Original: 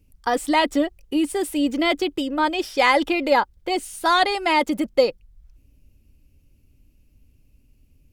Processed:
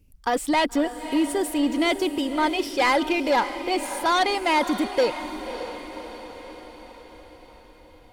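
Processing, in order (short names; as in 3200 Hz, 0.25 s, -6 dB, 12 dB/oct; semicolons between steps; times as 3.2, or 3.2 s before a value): soft clip -14.5 dBFS, distortion -14 dB; diffused feedback echo 0.576 s, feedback 57%, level -11 dB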